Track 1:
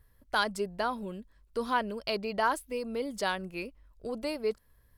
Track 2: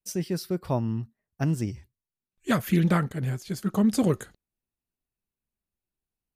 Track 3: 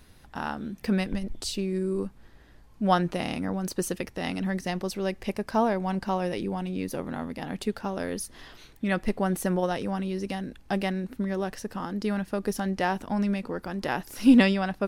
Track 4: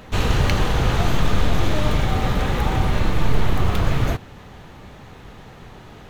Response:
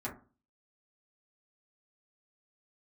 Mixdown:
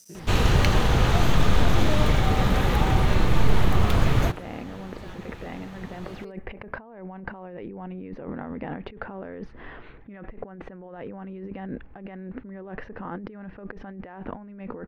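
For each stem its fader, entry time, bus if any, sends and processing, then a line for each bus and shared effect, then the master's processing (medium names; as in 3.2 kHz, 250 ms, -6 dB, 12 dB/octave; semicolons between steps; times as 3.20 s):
-18.0 dB, 1.80 s, no send, de-esser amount 90%
-14.0 dB, 0.00 s, no send, spectrogram pixelated in time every 100 ms; waveshaping leveller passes 2
-1.5 dB, 1.25 s, no send, low-pass 2.2 kHz 24 dB/octave; peaking EQ 460 Hz +4 dB 0.38 oct; compressor with a negative ratio -37 dBFS, ratio -1
-1.0 dB, 0.15 s, no send, none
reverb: none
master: none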